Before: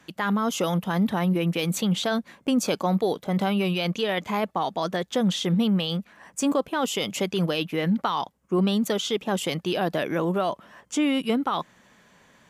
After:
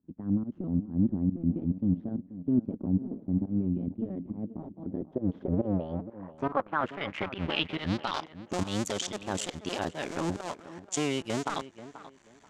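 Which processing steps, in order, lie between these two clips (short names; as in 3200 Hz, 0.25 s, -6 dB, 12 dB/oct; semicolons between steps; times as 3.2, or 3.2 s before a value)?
cycle switcher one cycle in 2, muted; pump 139 bpm, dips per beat 1, -19 dB, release 0.151 s; notch 480 Hz, Q 12; low-pass sweep 250 Hz -> 7300 Hz, 4.76–8.58; tape echo 0.485 s, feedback 27%, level -13 dB, low-pass 1900 Hz; gain -4 dB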